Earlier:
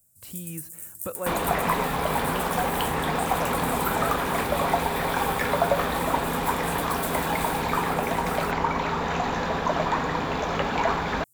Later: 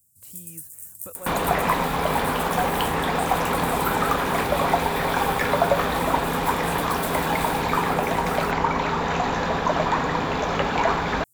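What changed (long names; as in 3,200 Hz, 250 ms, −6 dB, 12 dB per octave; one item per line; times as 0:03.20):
speech −7.5 dB
second sound +4.0 dB
reverb: off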